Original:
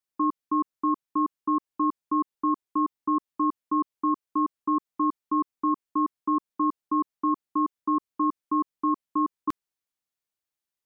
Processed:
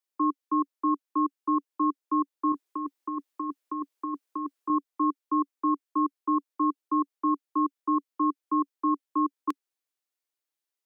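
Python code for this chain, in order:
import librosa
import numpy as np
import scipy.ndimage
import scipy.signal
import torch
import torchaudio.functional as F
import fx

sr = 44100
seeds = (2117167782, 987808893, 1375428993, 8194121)

y = scipy.signal.sosfilt(scipy.signal.cheby1(5, 1.0, 280.0, 'highpass', fs=sr, output='sos'), x)
y = fx.over_compress(y, sr, threshold_db=-31.0, ratio=-1.0, at=(2.52, 4.7))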